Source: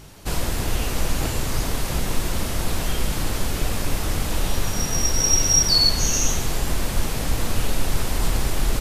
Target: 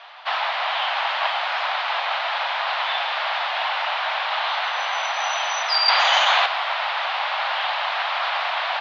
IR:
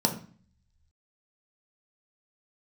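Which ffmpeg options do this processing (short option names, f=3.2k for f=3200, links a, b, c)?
-filter_complex "[0:a]asettb=1/sr,asplit=3[a][b][c];[a]atrim=end=5.884[d];[b]atrim=start=5.88:end=6.46,asetpts=PTS-STARTPTS,afade=t=in:d=0.004:c=qsin,afade=t=out:st=0.576:d=0.004:c=qsin,acontrast=87[e];[c]atrim=start=6.456[f];[d][e]acrossfade=d=0.004:c1=hsin:c2=qsin[g];[g][f]acrossfade=d=0.004:c1=qsin:c2=hsin,highpass=f=390:t=q:w=0.5412,highpass=f=390:t=q:w=1.307,lowpass=f=3.5k:t=q:w=0.5176,lowpass=f=3.5k:t=q:w=0.7071,lowpass=f=3.5k:t=q:w=1.932,afreqshift=320,volume=9dB"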